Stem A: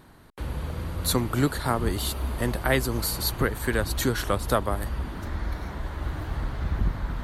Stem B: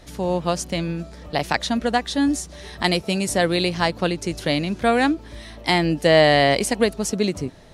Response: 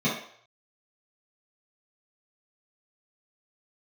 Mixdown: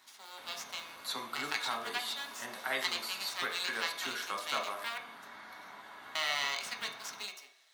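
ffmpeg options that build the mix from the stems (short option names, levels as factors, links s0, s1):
-filter_complex "[0:a]volume=0.422,asplit=2[s0][s1];[s1]volume=0.224[s2];[1:a]bandpass=f=4200:t=q:w=0.68:csg=0,aeval=exprs='max(val(0),0)':c=same,acrusher=bits=3:mode=log:mix=0:aa=0.000001,volume=0.596,asplit=3[s3][s4][s5];[s3]atrim=end=4.98,asetpts=PTS-STARTPTS,afade=t=out:st=4.976:d=0.004:c=hsin[s6];[s4]atrim=start=4.98:end=6.15,asetpts=PTS-STARTPTS,volume=0[s7];[s5]atrim=start=6.15,asetpts=PTS-STARTPTS,afade=t=in:d=0.004:c=hsin[s8];[s6][s7][s8]concat=n=3:v=0:a=1,asplit=2[s9][s10];[s10]volume=0.178[s11];[2:a]atrim=start_sample=2205[s12];[s2][s11]amix=inputs=2:normalize=0[s13];[s13][s12]afir=irnorm=-1:irlink=0[s14];[s0][s9][s14]amix=inputs=3:normalize=0,highpass=990,acrossover=split=6100[s15][s16];[s16]acompressor=threshold=0.00447:ratio=4:attack=1:release=60[s17];[s15][s17]amix=inputs=2:normalize=0"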